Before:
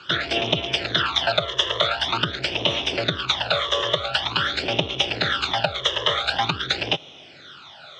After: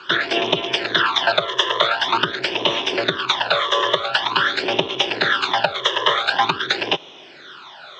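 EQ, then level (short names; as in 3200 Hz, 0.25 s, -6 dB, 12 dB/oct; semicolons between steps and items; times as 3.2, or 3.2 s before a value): speaker cabinet 190–8000 Hz, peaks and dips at 380 Hz +7 dB, 1000 Hz +10 dB, 1700 Hz +6 dB; +1.5 dB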